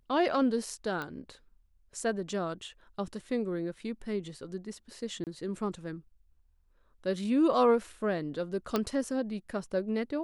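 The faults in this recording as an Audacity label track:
1.020000	1.020000	pop -23 dBFS
5.240000	5.270000	gap 28 ms
8.760000	8.760000	pop -14 dBFS

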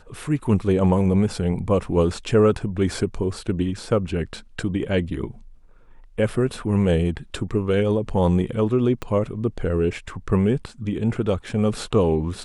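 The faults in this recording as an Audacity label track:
9.020000	9.020000	pop -16 dBFS

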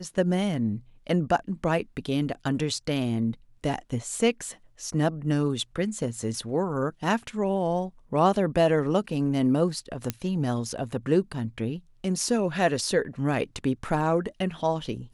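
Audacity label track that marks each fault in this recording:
10.100000	10.100000	pop -11 dBFS

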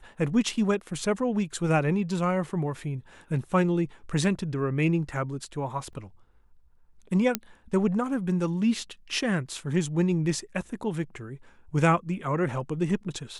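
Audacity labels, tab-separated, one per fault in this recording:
5.930000	5.930000	gap 3.2 ms
7.350000	7.350000	pop -7 dBFS

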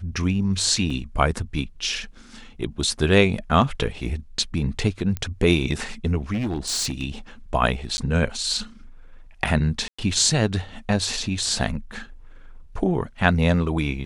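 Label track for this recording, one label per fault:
0.900000	0.900000	gap 4 ms
5.170000	5.170000	pop -14 dBFS
6.330000	7.030000	clipped -21.5 dBFS
7.970000	7.980000	gap 10 ms
9.880000	9.980000	gap 0.105 s

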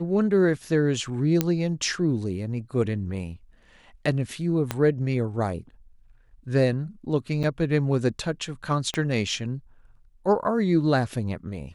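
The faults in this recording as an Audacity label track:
1.410000	1.410000	pop -7 dBFS
4.710000	4.710000	pop -10 dBFS
7.430000	7.440000	gap 7 ms
8.940000	8.940000	pop -14 dBFS

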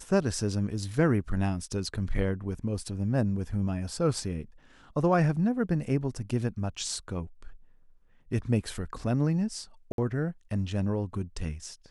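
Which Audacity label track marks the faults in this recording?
9.920000	9.980000	gap 62 ms

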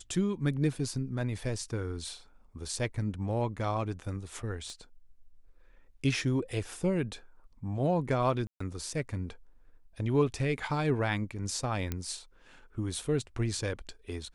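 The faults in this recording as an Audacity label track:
4.700000	4.700000	pop -33 dBFS
8.470000	8.600000	gap 0.134 s
11.920000	11.920000	pop -18 dBFS

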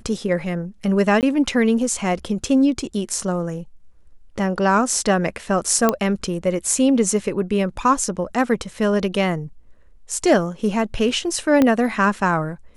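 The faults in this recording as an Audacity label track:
1.210000	1.230000	gap 18 ms
5.890000	5.890000	pop -3 dBFS
11.620000	11.620000	pop -5 dBFS

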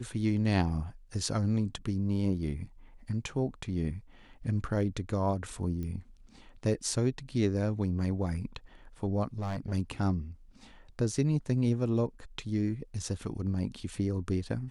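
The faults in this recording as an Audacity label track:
5.830000	5.830000	pop -27 dBFS
9.380000	9.730000	clipped -30.5 dBFS

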